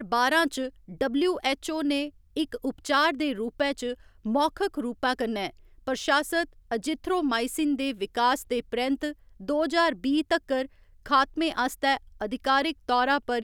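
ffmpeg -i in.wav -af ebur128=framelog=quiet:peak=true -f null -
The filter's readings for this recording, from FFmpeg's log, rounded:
Integrated loudness:
  I:         -26.9 LUFS
  Threshold: -37.1 LUFS
Loudness range:
  LRA:         1.9 LU
  Threshold: -47.3 LUFS
  LRA low:   -28.2 LUFS
  LRA high:  -26.3 LUFS
True peak:
  Peak:       -9.0 dBFS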